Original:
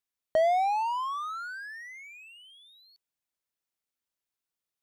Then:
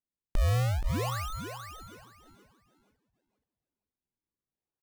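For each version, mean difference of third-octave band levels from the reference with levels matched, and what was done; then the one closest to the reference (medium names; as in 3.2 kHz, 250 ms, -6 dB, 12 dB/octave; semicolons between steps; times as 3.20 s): 16.5 dB: gain riding within 5 dB 2 s; Savitzky-Golay filter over 65 samples; decimation with a swept rate 41×, swing 160% 0.55 Hz; feedback delay 475 ms, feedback 21%, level -8 dB; trim -1.5 dB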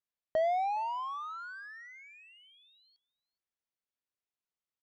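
2.5 dB: low-pass 6.8 kHz 12 dB/octave; treble shelf 4.6 kHz -7.5 dB; on a send: delay 415 ms -24 dB; on the sum: trim -5 dB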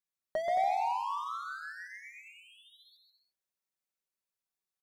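4.0 dB: peaking EQ 3 kHz -4.5 dB 0.2 oct; hum notches 50/100/150/200/250/300/350 Hz; comb 5.3 ms, depth 55%; on a send: bouncing-ball echo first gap 130 ms, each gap 0.7×, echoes 5; on the sum: trim -7 dB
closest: second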